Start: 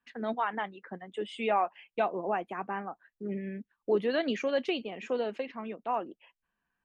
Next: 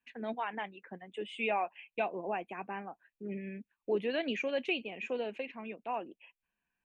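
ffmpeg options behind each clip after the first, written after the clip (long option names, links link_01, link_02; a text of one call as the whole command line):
ffmpeg -i in.wav -af "equalizer=frequency=1250:width_type=o:width=0.33:gain=-7,equalizer=frequency=2500:width_type=o:width=0.33:gain=11,equalizer=frequency=5000:width_type=o:width=0.33:gain=-9,volume=-4.5dB" out.wav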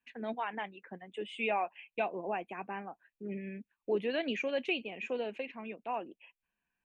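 ffmpeg -i in.wav -af anull out.wav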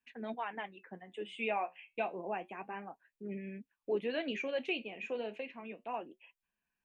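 ffmpeg -i in.wav -af "flanger=delay=4.7:depth=9.4:regen=-64:speed=0.3:shape=sinusoidal,volume=1.5dB" out.wav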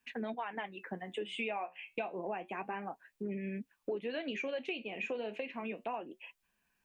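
ffmpeg -i in.wav -af "acompressor=threshold=-45dB:ratio=6,volume=9.5dB" out.wav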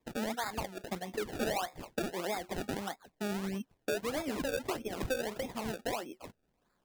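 ffmpeg -i in.wav -af "acrusher=samples=29:mix=1:aa=0.000001:lfo=1:lforange=29:lforate=1.6,volume=3dB" out.wav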